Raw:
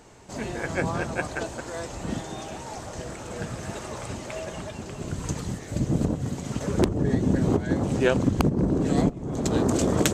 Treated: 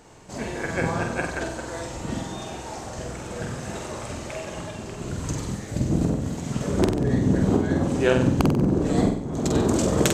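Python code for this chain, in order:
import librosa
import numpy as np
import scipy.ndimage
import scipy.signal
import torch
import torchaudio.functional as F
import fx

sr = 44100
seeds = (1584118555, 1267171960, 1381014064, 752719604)

y = fx.room_flutter(x, sr, wall_m=8.1, rt60_s=0.61)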